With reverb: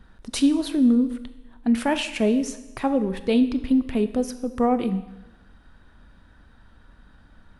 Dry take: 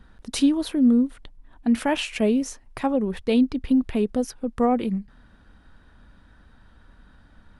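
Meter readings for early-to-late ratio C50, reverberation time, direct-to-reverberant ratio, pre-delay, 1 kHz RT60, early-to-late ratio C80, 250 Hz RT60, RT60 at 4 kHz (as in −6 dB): 13.0 dB, 1.0 s, 10.5 dB, 21 ms, 1.0 s, 14.5 dB, 1.0 s, 1.0 s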